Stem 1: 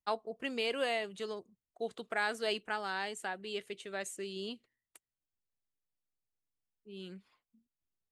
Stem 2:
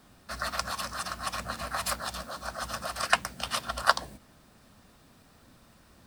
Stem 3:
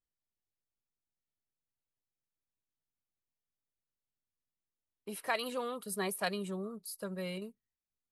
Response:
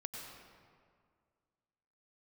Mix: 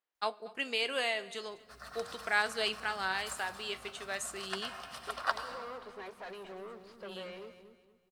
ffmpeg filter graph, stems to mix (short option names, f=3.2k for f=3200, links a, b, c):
-filter_complex "[0:a]tiltshelf=f=650:g=-5.5,flanger=delay=8.9:depth=4.1:regen=75:speed=0.41:shape=triangular,adelay=150,volume=3dB,asplit=3[a][b][c];[b]volume=-19dB[d];[c]volume=-21dB[e];[1:a]adelay=1400,volume=-8dB,asplit=2[f][g];[g]volume=-4.5dB[h];[2:a]asplit=2[i][j];[j]highpass=f=720:p=1,volume=35dB,asoftclip=type=tanh:threshold=-18.5dB[k];[i][k]amix=inputs=2:normalize=0,lowpass=f=1.5k:p=1,volume=-6dB,volume=-17.5dB,asplit=4[l][m][n][o];[m]volume=-15.5dB[p];[n]volume=-12dB[q];[o]apad=whole_len=329123[r];[f][r]sidechaingate=range=-33dB:threshold=-56dB:ratio=16:detection=peak[s];[s][l]amix=inputs=2:normalize=0,highpass=330,lowpass=4.6k,alimiter=limit=-19dB:level=0:latency=1:release=413,volume=0dB[t];[3:a]atrim=start_sample=2205[u];[d][h][p]amix=inputs=3:normalize=0[v];[v][u]afir=irnorm=-1:irlink=0[w];[e][q]amix=inputs=2:normalize=0,aecho=0:1:234|468|702|936|1170:1|0.33|0.109|0.0359|0.0119[x];[a][t][w][x]amix=inputs=4:normalize=0"